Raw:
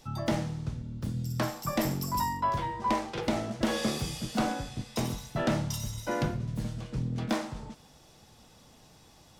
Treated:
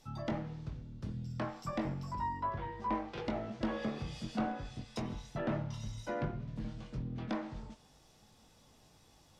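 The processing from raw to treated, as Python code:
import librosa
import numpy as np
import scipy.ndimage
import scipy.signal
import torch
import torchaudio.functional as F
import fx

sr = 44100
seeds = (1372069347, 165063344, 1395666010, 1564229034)

y = fx.env_lowpass_down(x, sr, base_hz=2000.0, full_db=-26.0)
y = fx.chorus_voices(y, sr, voices=6, hz=0.31, base_ms=21, depth_ms=2.5, mix_pct=30)
y = F.gain(torch.from_numpy(y), -4.5).numpy()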